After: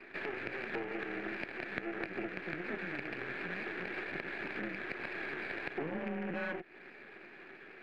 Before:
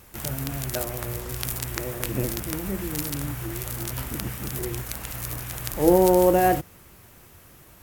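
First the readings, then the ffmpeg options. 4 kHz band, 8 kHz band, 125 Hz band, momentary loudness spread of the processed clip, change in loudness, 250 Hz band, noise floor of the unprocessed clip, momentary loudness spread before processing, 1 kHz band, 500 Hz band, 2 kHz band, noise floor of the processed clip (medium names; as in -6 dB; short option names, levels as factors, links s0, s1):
-14.0 dB, under -40 dB, -21.0 dB, 13 LU, -14.0 dB, -14.5 dB, -51 dBFS, 13 LU, -17.0 dB, -17.0 dB, 0.0 dB, -54 dBFS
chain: -filter_complex "[0:a]asplit=3[s0][s1][s2];[s0]bandpass=f=530:t=q:w=8,volume=1[s3];[s1]bandpass=f=1840:t=q:w=8,volume=0.501[s4];[s2]bandpass=f=2480:t=q:w=8,volume=0.355[s5];[s3][s4][s5]amix=inputs=3:normalize=0,equalizer=f=2300:t=o:w=0.9:g=13,afftfilt=real='re*lt(hypot(re,im),0.251)':imag='im*lt(hypot(re,im),0.251)':win_size=1024:overlap=0.75,acompressor=threshold=0.00562:ratio=10,highpass=f=150:t=q:w=0.5412,highpass=f=150:t=q:w=1.307,lowpass=f=3500:t=q:w=0.5176,lowpass=f=3500:t=q:w=0.7071,lowpass=f=3500:t=q:w=1.932,afreqshift=-160,aeval=exprs='max(val(0),0)':c=same,acrossover=split=160 2600:gain=0.178 1 0.0794[s6][s7][s8];[s6][s7][s8]amix=inputs=3:normalize=0,volume=6.31"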